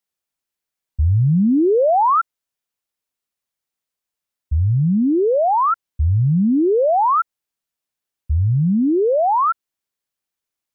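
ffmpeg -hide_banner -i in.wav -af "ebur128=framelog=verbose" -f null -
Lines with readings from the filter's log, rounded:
Integrated loudness:
  I:         -17.1 LUFS
  Threshold: -27.5 LUFS
Loudness range:
  LRA:         4.4 LU
  Threshold: -39.3 LUFS
  LRA low:   -21.9 LUFS
  LRA high:  -17.4 LUFS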